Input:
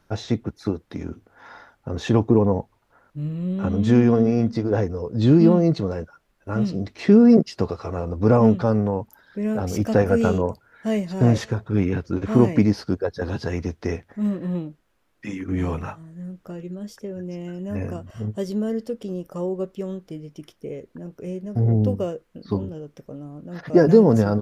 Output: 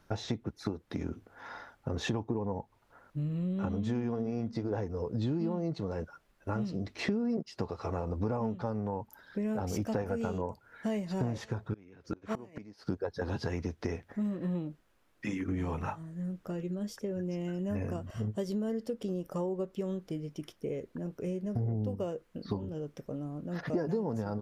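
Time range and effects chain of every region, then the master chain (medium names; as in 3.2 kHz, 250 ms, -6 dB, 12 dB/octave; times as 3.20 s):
11.73–12.87 s: bass shelf 220 Hz -10 dB + inverted gate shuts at -19 dBFS, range -26 dB
whole clip: dynamic bell 880 Hz, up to +7 dB, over -44 dBFS, Q 4.5; compression 6:1, threshold -29 dBFS; trim -1.5 dB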